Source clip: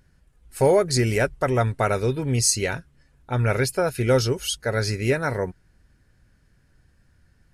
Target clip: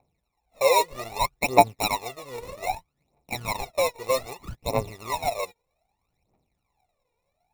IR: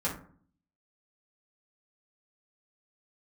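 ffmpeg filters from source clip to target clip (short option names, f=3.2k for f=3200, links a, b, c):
-filter_complex "[0:a]asplit=3[a][b][c];[a]bandpass=f=730:t=q:w=8,volume=0dB[d];[b]bandpass=f=1.09k:t=q:w=8,volume=-6dB[e];[c]bandpass=f=2.44k:t=q:w=8,volume=-9dB[f];[d][e][f]amix=inputs=3:normalize=0,acrusher=samples=28:mix=1:aa=0.000001,aphaser=in_gain=1:out_gain=1:delay=2.2:decay=0.76:speed=0.63:type=triangular,volume=4.5dB"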